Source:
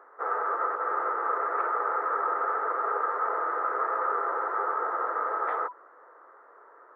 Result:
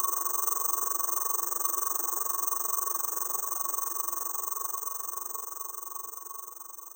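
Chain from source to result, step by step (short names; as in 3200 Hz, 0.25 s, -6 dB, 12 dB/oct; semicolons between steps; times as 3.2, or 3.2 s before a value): Doppler pass-by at 2.79, 34 m/s, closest 12 m; Paulstretch 11×, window 1.00 s, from 5.31; careless resampling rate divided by 6×, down none, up zero stuff; on a send: thinning echo 0.183 s, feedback 82%, high-pass 420 Hz, level -12.5 dB; on the sum: AM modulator 23 Hz, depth 85%; in parallel at +0.5 dB: limiter -29 dBFS, peak gain reduction 10 dB; on the sum: hard clip -20 dBFS, distortion -28 dB; high shelf 2000 Hz +8 dB; notch 370 Hz, Q 12; small resonant body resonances 230/340/1100 Hz, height 17 dB, ringing for 95 ms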